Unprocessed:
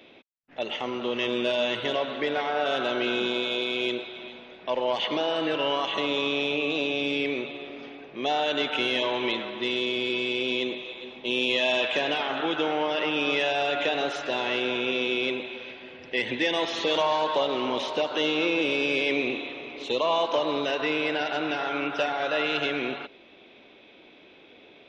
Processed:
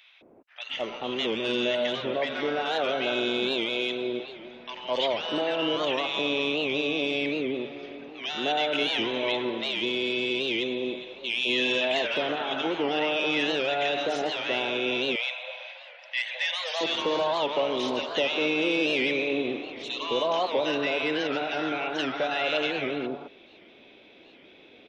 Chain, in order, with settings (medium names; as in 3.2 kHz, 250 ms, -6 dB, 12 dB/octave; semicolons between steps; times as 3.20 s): 14.95–16.60 s: brick-wall FIR high-pass 520 Hz; bands offset in time highs, lows 210 ms, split 1.1 kHz; warped record 78 rpm, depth 160 cents